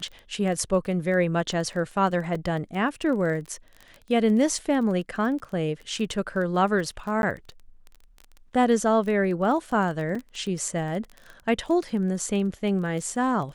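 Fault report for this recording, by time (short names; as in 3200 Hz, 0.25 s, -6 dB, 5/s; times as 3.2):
crackle 19/s -32 dBFS
2.35 gap 3.1 ms
7.22–7.23 gap 11 ms
10.15 gap 4.5 ms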